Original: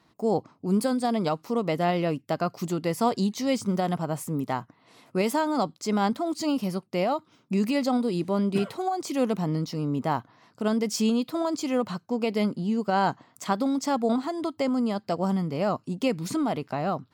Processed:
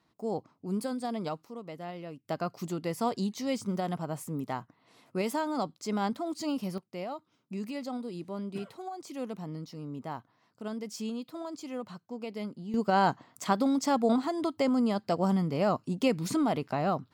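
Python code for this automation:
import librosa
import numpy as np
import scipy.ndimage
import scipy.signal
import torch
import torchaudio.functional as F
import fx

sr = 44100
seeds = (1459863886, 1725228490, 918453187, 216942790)

y = fx.gain(x, sr, db=fx.steps((0.0, -8.5), (1.45, -16.0), (2.25, -6.0), (6.78, -12.0), (12.74, -1.0)))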